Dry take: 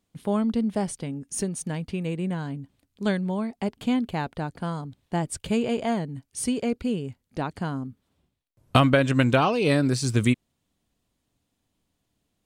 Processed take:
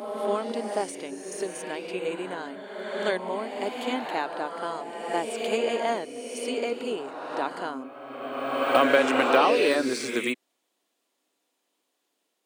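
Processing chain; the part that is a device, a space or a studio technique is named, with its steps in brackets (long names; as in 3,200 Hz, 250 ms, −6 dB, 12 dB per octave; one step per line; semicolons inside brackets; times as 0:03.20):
de-essing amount 70%
ghost voice (reversed playback; convolution reverb RT60 2.3 s, pre-delay 20 ms, DRR 2 dB; reversed playback; high-pass filter 340 Hz 24 dB per octave)
level +1.5 dB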